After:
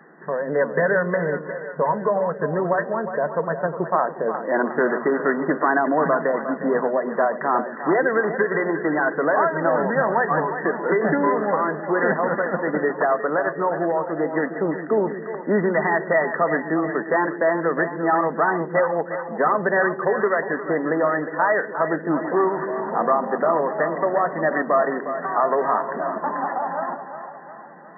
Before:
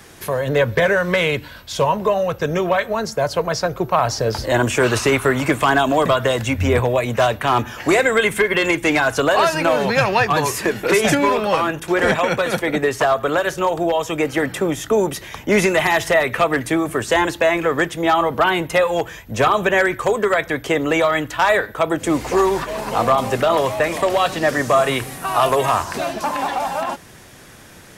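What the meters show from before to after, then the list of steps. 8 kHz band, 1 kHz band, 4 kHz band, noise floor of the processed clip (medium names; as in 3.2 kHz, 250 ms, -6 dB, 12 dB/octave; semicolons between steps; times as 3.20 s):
under -40 dB, -3.0 dB, under -40 dB, -35 dBFS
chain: FFT band-pass 140–2000 Hz; on a send: two-band feedback delay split 430 Hz, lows 136 ms, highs 358 ms, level -9.5 dB; on the sum: trim -3.5 dB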